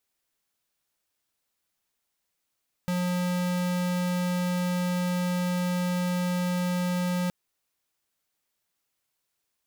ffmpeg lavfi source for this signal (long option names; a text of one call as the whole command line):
ffmpeg -f lavfi -i "aevalsrc='0.0447*(2*lt(mod(179*t,1),0.5)-1)':duration=4.42:sample_rate=44100" out.wav